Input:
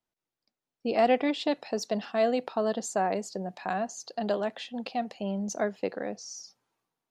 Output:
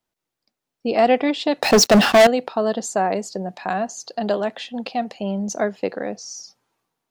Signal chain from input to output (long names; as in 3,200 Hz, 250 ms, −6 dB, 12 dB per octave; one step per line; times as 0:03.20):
0:01.62–0:02.27: leveller curve on the samples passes 5
level +7 dB